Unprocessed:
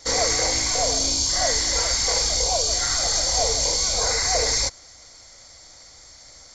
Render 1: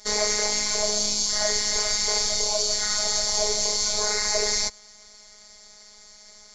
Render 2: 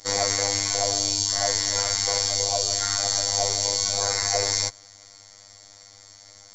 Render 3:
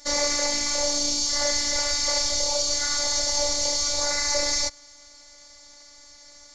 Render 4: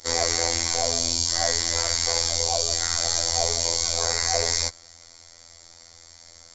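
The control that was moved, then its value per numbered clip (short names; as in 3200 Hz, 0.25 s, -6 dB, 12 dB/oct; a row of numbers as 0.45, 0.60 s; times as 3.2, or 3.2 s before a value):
robotiser, frequency: 210, 100, 290, 84 Hz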